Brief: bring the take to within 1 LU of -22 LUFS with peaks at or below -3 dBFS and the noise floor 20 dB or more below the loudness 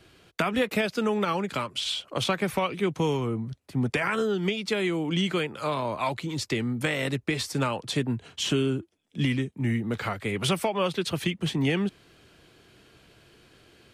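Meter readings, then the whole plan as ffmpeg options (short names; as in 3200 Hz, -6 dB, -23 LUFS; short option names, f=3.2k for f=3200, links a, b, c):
loudness -28.0 LUFS; peak -12.0 dBFS; loudness target -22.0 LUFS
-> -af "volume=6dB"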